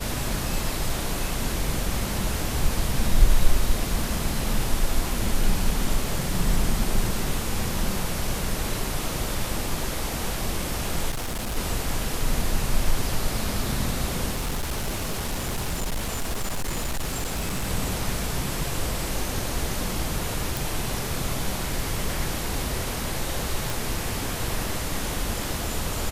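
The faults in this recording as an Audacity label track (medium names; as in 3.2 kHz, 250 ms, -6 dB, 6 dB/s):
11.100000	11.570000	clipped -25.5 dBFS
14.310000	17.680000	clipped -23 dBFS
20.570000	20.570000	pop
23.700000	23.700000	pop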